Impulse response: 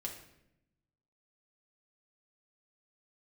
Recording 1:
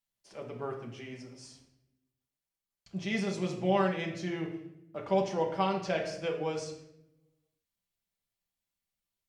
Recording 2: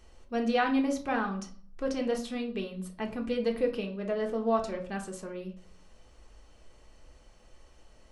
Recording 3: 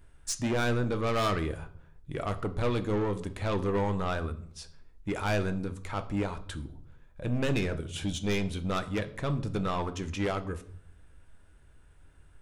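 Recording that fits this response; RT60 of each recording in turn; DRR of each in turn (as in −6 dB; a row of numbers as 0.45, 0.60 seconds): 1; 0.80, 0.45, 0.60 seconds; −1.0, 2.0, 9.0 decibels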